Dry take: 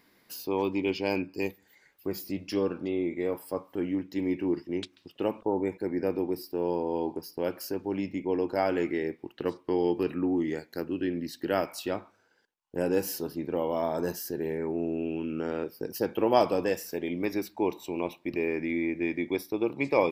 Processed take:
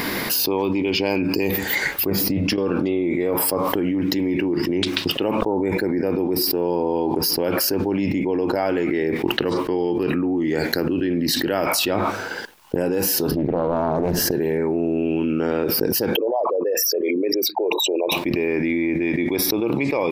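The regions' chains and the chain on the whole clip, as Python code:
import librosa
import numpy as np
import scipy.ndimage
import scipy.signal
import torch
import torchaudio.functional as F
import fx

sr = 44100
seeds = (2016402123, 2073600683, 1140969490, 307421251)

y = fx.chain(x, sr, fx.high_shelf(hz=2300.0, db=-11.0),
    fx.notch(hz=360.0, q=5.6),
    fx.over_compress(threshold_db=-35.0, ratio=-1.0), at=(2.1, 2.58))
y = fx.chain(y, sr, fx.tilt_eq(slope=-3.5),
    fx.doppler_dist(depth_ms=0.41), at=(13.31, 14.31))
y = fx.chain(y, sr, fx.envelope_sharpen(power=3.0),
    fx.highpass(hz=1000.0, slope=12), at=(16.16, 18.12))
y = fx.peak_eq(y, sr, hz=7100.0, db=-3.0, octaves=0.77)
y = fx.env_flatten(y, sr, amount_pct=100)
y = y * librosa.db_to_amplitude(-1.0)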